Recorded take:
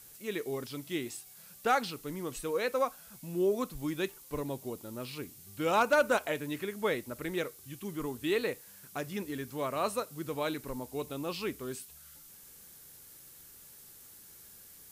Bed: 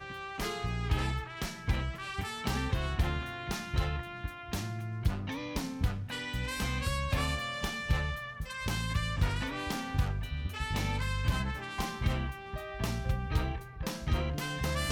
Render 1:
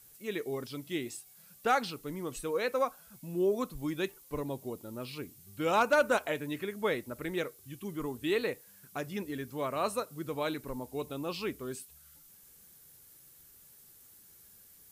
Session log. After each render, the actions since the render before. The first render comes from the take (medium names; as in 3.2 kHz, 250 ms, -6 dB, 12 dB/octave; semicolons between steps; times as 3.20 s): noise reduction 6 dB, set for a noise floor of -54 dBFS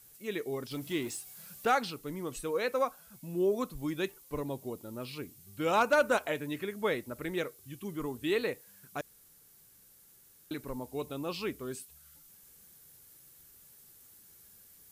0.71–1.70 s: companding laws mixed up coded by mu; 9.01–10.51 s: room tone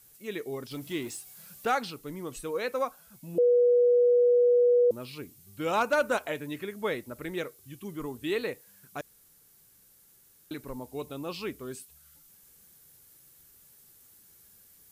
3.38–4.91 s: bleep 486 Hz -18 dBFS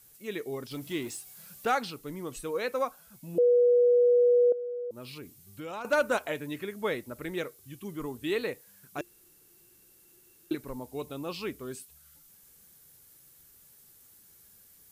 4.52–5.85 s: compression 3:1, threshold -39 dBFS; 8.98–10.55 s: small resonant body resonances 350/2700 Hz, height 17 dB, ringing for 85 ms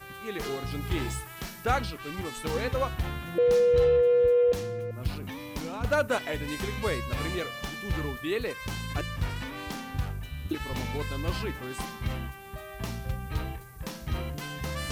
add bed -1.5 dB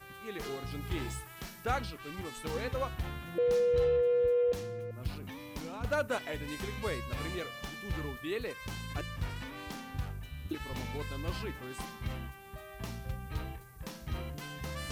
trim -6 dB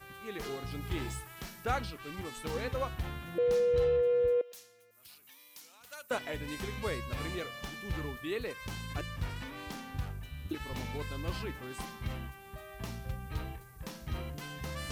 4.41–6.11 s: differentiator